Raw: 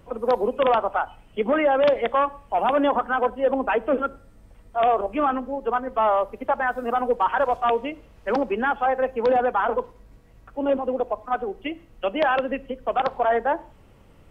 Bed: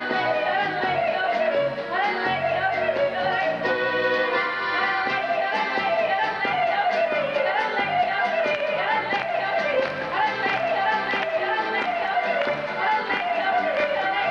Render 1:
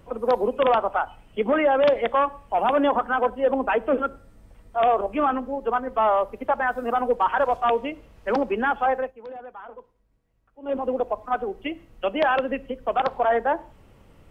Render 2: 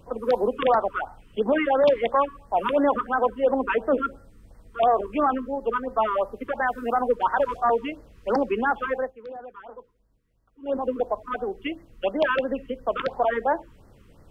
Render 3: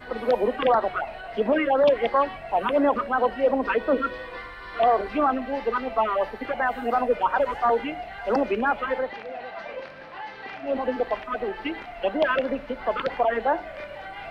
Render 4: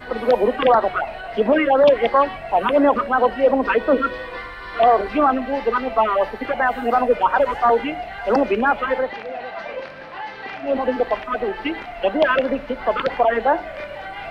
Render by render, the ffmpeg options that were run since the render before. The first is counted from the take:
ffmpeg -i in.wav -filter_complex "[0:a]asplit=3[link_01][link_02][link_03];[link_01]atrim=end=9.13,asetpts=PTS-STARTPTS,afade=type=out:start_time=8.94:duration=0.19:silence=0.11885[link_04];[link_02]atrim=start=9.13:end=10.62,asetpts=PTS-STARTPTS,volume=-18.5dB[link_05];[link_03]atrim=start=10.62,asetpts=PTS-STARTPTS,afade=type=in:duration=0.19:silence=0.11885[link_06];[link_04][link_05][link_06]concat=n=3:v=0:a=1" out.wav
ffmpeg -i in.wav -af "afftfilt=real='re*(1-between(b*sr/1024,640*pow(3000/640,0.5+0.5*sin(2*PI*2.9*pts/sr))/1.41,640*pow(3000/640,0.5+0.5*sin(2*PI*2.9*pts/sr))*1.41))':imag='im*(1-between(b*sr/1024,640*pow(3000/640,0.5+0.5*sin(2*PI*2.9*pts/sr))/1.41,640*pow(3000/640,0.5+0.5*sin(2*PI*2.9*pts/sr))*1.41))':win_size=1024:overlap=0.75" out.wav
ffmpeg -i in.wav -i bed.wav -filter_complex "[1:a]volume=-14.5dB[link_01];[0:a][link_01]amix=inputs=2:normalize=0" out.wav
ffmpeg -i in.wav -af "volume=5.5dB" out.wav

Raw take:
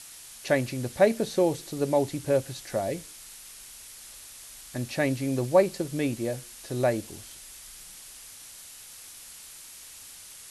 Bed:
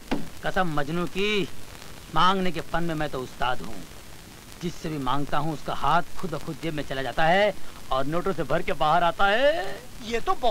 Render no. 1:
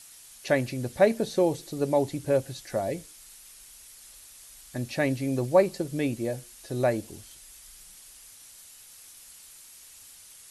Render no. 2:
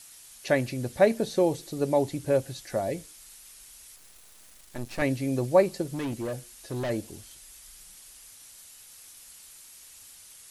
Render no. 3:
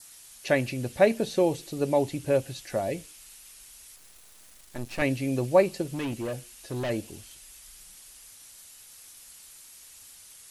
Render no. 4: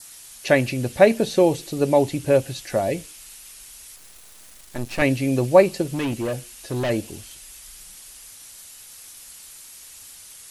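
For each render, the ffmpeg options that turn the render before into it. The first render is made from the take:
ffmpeg -i in.wav -af "afftdn=noise_reduction=6:noise_floor=-47" out.wav
ffmpeg -i in.wav -filter_complex "[0:a]asettb=1/sr,asplit=3[link_01][link_02][link_03];[link_01]atrim=end=3.964[link_04];[link_02]atrim=start=3.96:end=5.02,asetpts=PTS-STARTPTS,afade=type=in:duration=0.004:curve=qsin,afade=type=out:start_time=1.056:duration=0.004:curve=qsin,aeval=exprs='max(val(0),0)':channel_layout=same[link_05];[link_03]atrim=start=5.016[link_06];[link_04][link_05]acrossfade=duration=0.004:curve1=hsin:curve2=qsin[link_07];[link_07][link_06]acrossfade=duration=0.004:curve1=qsin:curve2=hsin,asplit=3[link_08][link_09][link_10];[link_08]afade=type=out:start_time=5.83:duration=0.02[link_11];[link_09]asoftclip=type=hard:threshold=-28.5dB,afade=type=in:start_time=5.83:duration=0.02,afade=type=out:start_time=6.89:duration=0.02[link_12];[link_10]afade=type=in:start_time=6.89:duration=0.02[link_13];[link_11][link_12][link_13]amix=inputs=3:normalize=0" out.wav
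ffmpeg -i in.wav -af "adynamicequalizer=threshold=0.00178:dfrequency=2700:dqfactor=3.1:tfrequency=2700:tqfactor=3.1:attack=5:release=100:ratio=0.375:range=3.5:mode=boostabove:tftype=bell" out.wav
ffmpeg -i in.wav -af "volume=6.5dB,alimiter=limit=-1dB:level=0:latency=1" out.wav

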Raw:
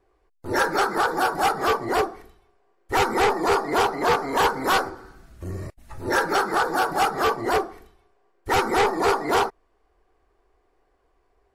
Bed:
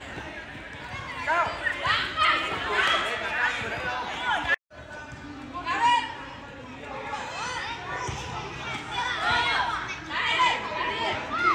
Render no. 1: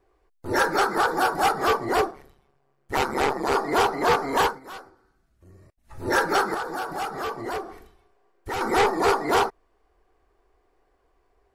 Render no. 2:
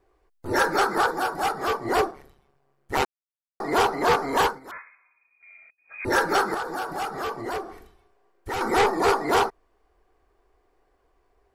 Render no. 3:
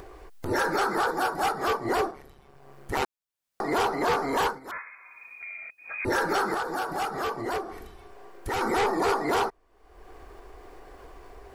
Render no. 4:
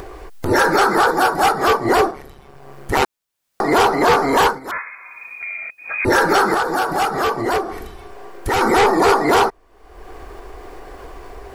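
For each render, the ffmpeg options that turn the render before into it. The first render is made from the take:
ffmpeg -i in.wav -filter_complex "[0:a]asettb=1/sr,asplit=3[link_01][link_02][link_03];[link_01]atrim=end=2.114[link_04];[link_02]atrim=start=2.11:end=3.55,asetpts=PTS-STARTPTS,afade=type=in:duration=0.004:curve=qsin,afade=type=out:start_time=1.436:duration=0.004:curve=qsin,tremolo=f=140:d=0.788[link_05];[link_03]atrim=start=3.546[link_06];[link_04][link_05]acrossfade=duration=0.004:curve1=hsin:curve2=qsin[link_07];[link_07][link_06]acrossfade=duration=0.004:curve1=qsin:curve2=hsin,asettb=1/sr,asplit=3[link_08][link_09][link_10];[link_08]atrim=end=6.544[link_11];[link_09]atrim=start=6.54:end=8.61,asetpts=PTS-STARTPTS,afade=type=in:duration=0.004:curve=qsin,afade=type=out:start_time=2.066:duration=0.004:curve=qsin,acompressor=threshold=-33dB:ratio=2:attack=3.2:release=140:knee=1:detection=peak[link_12];[link_10]atrim=start=8.606[link_13];[link_11][link_12]acrossfade=duration=0.004:curve1=hsin:curve2=qsin[link_14];[link_14][link_13]acrossfade=duration=0.004:curve1=qsin:curve2=hsin,asplit=3[link_15][link_16][link_17];[link_15]atrim=end=4.6,asetpts=PTS-STARTPTS,afade=type=out:start_time=4.4:duration=0.2:silence=0.112202[link_18];[link_16]atrim=start=4.6:end=5.83,asetpts=PTS-STARTPTS,volume=-19dB[link_19];[link_17]atrim=start=5.83,asetpts=PTS-STARTPTS,afade=type=in:duration=0.2:silence=0.112202[link_20];[link_18][link_19][link_20]concat=n=3:v=0:a=1" out.wav
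ffmpeg -i in.wav -filter_complex "[0:a]asettb=1/sr,asplit=3[link_01][link_02][link_03];[link_01]atrim=end=4.714[link_04];[link_02]atrim=start=4.71:end=6.05,asetpts=PTS-STARTPTS,afade=type=in:duration=0.004:curve=qsin,afade=type=out:start_time=1.336:duration=0.004:curve=qsin,lowpass=frequency=2100:width_type=q:width=0.5098,lowpass=frequency=2100:width_type=q:width=0.6013,lowpass=frequency=2100:width_type=q:width=0.9,lowpass=frequency=2100:width_type=q:width=2.563,afreqshift=-2500[link_05];[link_03]atrim=start=6.046[link_06];[link_04][link_05]acrossfade=duration=0.004:curve1=hsin:curve2=qsin[link_07];[link_07][link_06]acrossfade=duration=0.004:curve1=qsin:curve2=hsin,asplit=5[link_08][link_09][link_10][link_11][link_12];[link_08]atrim=end=1.112[link_13];[link_09]atrim=start=1.108:end=1.852,asetpts=PTS-STARTPTS,volume=-4dB[link_14];[link_10]atrim=start=1.848:end=3.05,asetpts=PTS-STARTPTS,afade=type=out:start_time=1.198:duration=0.004:curve=hsin[link_15];[link_11]atrim=start=3.05:end=3.6,asetpts=PTS-STARTPTS,volume=0[link_16];[link_12]atrim=start=3.6,asetpts=PTS-STARTPTS,afade=type=in:duration=0.004:curve=hsin[link_17];[link_13][link_14]acrossfade=duration=0.004:curve1=hsin:curve2=hsin[link_18];[link_15][link_16][link_17]concat=n=3:v=0:a=1[link_19];[link_18][link_19]acrossfade=duration=0.004:curve1=hsin:curve2=hsin" out.wav
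ffmpeg -i in.wav -af "acompressor=mode=upward:threshold=-29dB:ratio=2.5,alimiter=limit=-18dB:level=0:latency=1:release=13" out.wav
ffmpeg -i in.wav -af "volume=11dB" out.wav

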